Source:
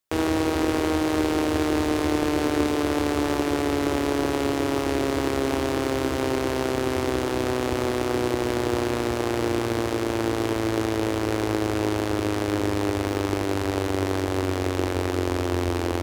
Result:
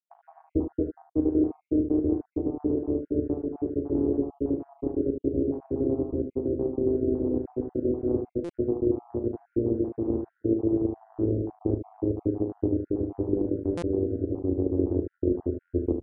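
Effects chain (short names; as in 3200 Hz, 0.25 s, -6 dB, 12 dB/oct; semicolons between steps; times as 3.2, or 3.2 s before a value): random spectral dropouts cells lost 64%; vocal rider within 4 dB 2 s; ladder low-pass 500 Hz, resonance 30%; early reflections 36 ms -8.5 dB, 48 ms -13.5 dB, 75 ms -8.5 dB; stuck buffer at 8.44/13.77, samples 256, times 8; gain +5.5 dB; AAC 96 kbps 22050 Hz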